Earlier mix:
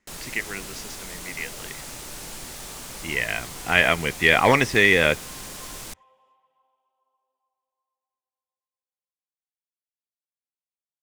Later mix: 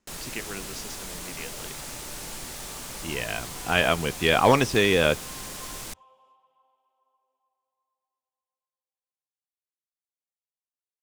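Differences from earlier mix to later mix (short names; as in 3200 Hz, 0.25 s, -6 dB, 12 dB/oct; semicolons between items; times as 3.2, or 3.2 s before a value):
speech: add bell 2000 Hz -13.5 dB 0.45 oct; second sound: send +10.5 dB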